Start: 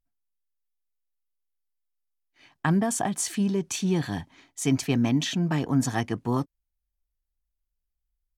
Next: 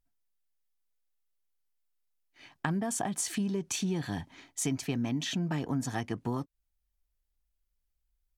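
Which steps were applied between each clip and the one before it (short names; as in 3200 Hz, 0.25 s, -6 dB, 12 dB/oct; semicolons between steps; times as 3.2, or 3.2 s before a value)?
notch 1100 Hz, Q 25; compressor 4:1, threshold -32 dBFS, peak gain reduction 12 dB; gain +2 dB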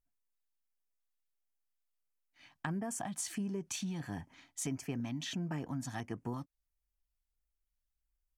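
LFO notch square 1.5 Hz 420–3800 Hz; gain -6 dB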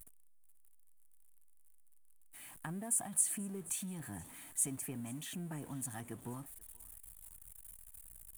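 zero-crossing step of -46.5 dBFS; resonant high shelf 7200 Hz +11 dB, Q 3; thinning echo 0.482 s, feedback 44%, high-pass 860 Hz, level -20 dB; gain -6.5 dB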